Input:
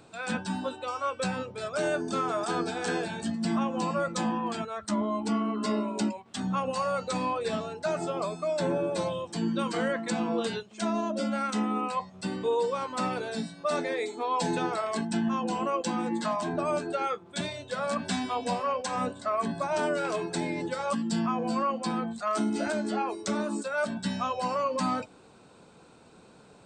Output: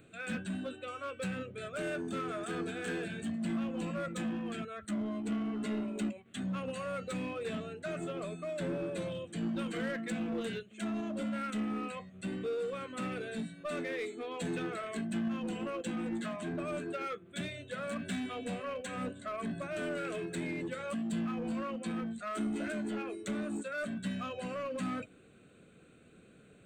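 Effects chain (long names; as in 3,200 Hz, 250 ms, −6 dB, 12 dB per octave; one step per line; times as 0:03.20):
phaser with its sweep stopped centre 2,200 Hz, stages 4
in parallel at −8 dB: wave folding −33 dBFS
on the sum: level −5 dB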